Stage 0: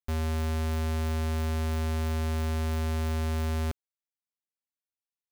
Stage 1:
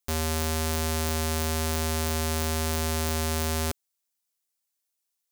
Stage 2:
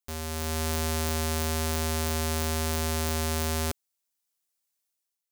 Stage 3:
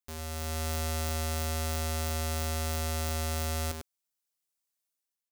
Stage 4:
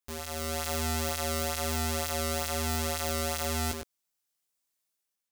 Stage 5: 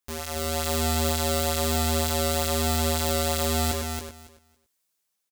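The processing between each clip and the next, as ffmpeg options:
-af "bass=f=250:g=-7,treble=f=4k:g=10,volume=5.5dB"
-af "dynaudnorm=f=100:g=9:m=8dB,volume=-7.5dB"
-filter_complex "[0:a]asplit=2[a][b];[b]adelay=99.13,volume=-6dB,highshelf=f=4k:g=-2.23[c];[a][c]amix=inputs=2:normalize=0,volume=-5dB"
-af "flanger=delay=17:depth=3.1:speed=1.1,volume=6.5dB"
-af "aecho=1:1:277|554|831:0.531|0.0849|0.0136,volume=4.5dB"

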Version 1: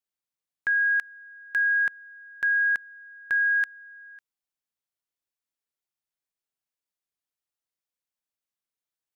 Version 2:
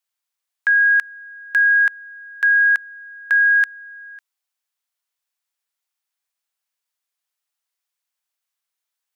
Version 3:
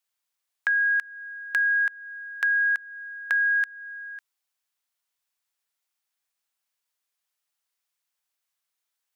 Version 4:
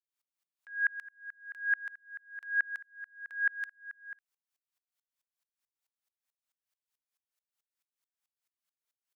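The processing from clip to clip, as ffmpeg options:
-af "highpass=770,volume=8.5dB"
-af "acompressor=threshold=-28dB:ratio=2"
-af "aeval=exprs='val(0)*pow(10,-34*if(lt(mod(-4.6*n/s,1),2*abs(-4.6)/1000),1-mod(-4.6*n/s,1)/(2*abs(-4.6)/1000),(mod(-4.6*n/s,1)-2*abs(-4.6)/1000)/(1-2*abs(-4.6)/1000))/20)':c=same"

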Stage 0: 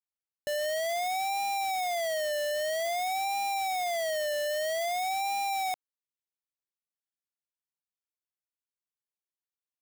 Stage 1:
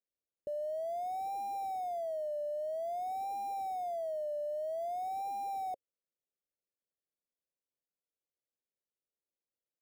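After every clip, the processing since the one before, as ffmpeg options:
-af "firequalizer=gain_entry='entry(120,0);entry(540,10);entry(1200,-29);entry(2300,-23);entry(9300,-17)':delay=0.05:min_phase=1,alimiter=level_in=8dB:limit=-24dB:level=0:latency=1,volume=-8dB,volume=-1.5dB"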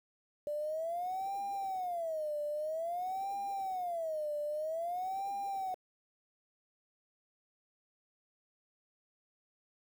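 -af "aeval=exprs='val(0)*gte(abs(val(0)),0.00266)':c=same"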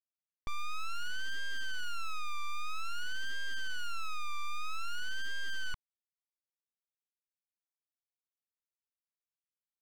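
-af "lowpass=3.5k,aeval=exprs='abs(val(0))':c=same,aeval=exprs='(tanh(89.1*val(0)+0.4)-tanh(0.4))/89.1':c=same,volume=13.5dB"

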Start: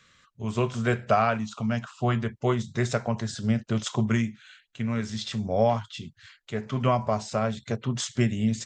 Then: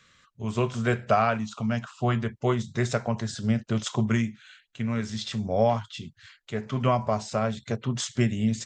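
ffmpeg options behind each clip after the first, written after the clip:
-af anull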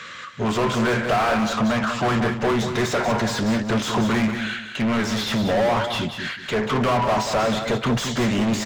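-filter_complex "[0:a]asplit=2[a][b];[b]highpass=f=720:p=1,volume=38dB,asoftclip=type=tanh:threshold=-9.5dB[c];[a][c]amix=inputs=2:normalize=0,lowpass=f=1.7k:p=1,volume=-6dB,aecho=1:1:187|374|561:0.398|0.107|0.029,volume=-3.5dB"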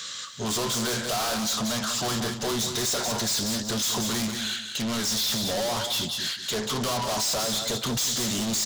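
-af "aexciter=amount=8.3:drive=5.6:freq=3.4k,volume=17dB,asoftclip=hard,volume=-17dB,volume=-7.5dB"

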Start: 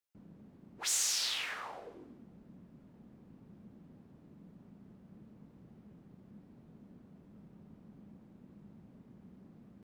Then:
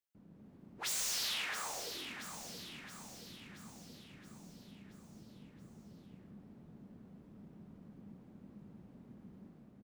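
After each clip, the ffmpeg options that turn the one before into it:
-filter_complex "[0:a]dynaudnorm=f=110:g=7:m=5dB,aeval=exprs='0.0473*(abs(mod(val(0)/0.0473+3,4)-2)-1)':c=same,asplit=2[a][b];[b]aecho=0:1:675|1350|2025|2700|3375|4050|4725:0.398|0.223|0.125|0.0699|0.0392|0.0219|0.0123[c];[a][c]amix=inputs=2:normalize=0,volume=-5dB"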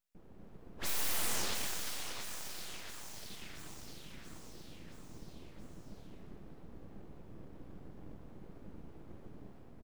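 -filter_complex "[0:a]lowshelf=f=130:t=q:w=3:g=7.5,asplit=9[a][b][c][d][e][f][g][h][i];[b]adelay=118,afreqshift=-38,volume=-9dB[j];[c]adelay=236,afreqshift=-76,volume=-12.9dB[k];[d]adelay=354,afreqshift=-114,volume=-16.8dB[l];[e]adelay=472,afreqshift=-152,volume=-20.6dB[m];[f]adelay=590,afreqshift=-190,volume=-24.5dB[n];[g]adelay=708,afreqshift=-228,volume=-28.4dB[o];[h]adelay=826,afreqshift=-266,volume=-32.3dB[p];[i]adelay=944,afreqshift=-304,volume=-36.1dB[q];[a][j][k][l][m][n][o][p][q]amix=inputs=9:normalize=0,aeval=exprs='abs(val(0))':c=same,volume=5dB"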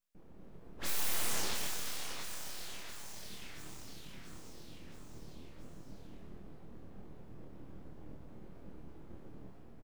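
-filter_complex "[0:a]asplit=2[a][b];[b]adelay=26,volume=-3dB[c];[a][c]amix=inputs=2:normalize=0,volume=-2dB"

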